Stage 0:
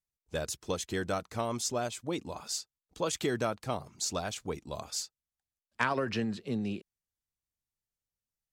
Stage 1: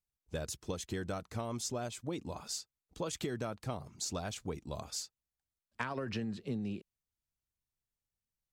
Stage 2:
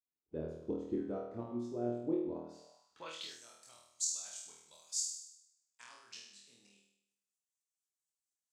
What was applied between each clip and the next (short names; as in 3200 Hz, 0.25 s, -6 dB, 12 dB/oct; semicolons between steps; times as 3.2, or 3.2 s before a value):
low shelf 260 Hz +7 dB; compressor, threshold -30 dBFS, peak gain reduction 7.5 dB; gain -3.5 dB
tremolo saw up 4.2 Hz, depth 75%; flutter echo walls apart 4.3 m, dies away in 0.79 s; band-pass sweep 340 Hz -> 7400 Hz, 2.56–3.42; gain +5.5 dB